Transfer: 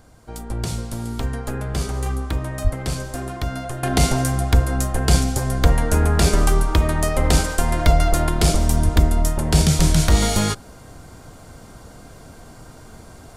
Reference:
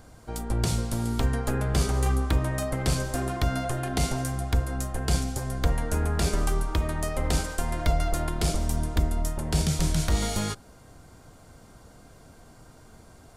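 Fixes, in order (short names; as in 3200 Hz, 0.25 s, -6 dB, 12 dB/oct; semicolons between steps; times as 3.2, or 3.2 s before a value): 2.63–2.75 HPF 140 Hz 24 dB/oct; 8.84–8.96 HPF 140 Hz 24 dB/oct; gain 0 dB, from 3.83 s -9 dB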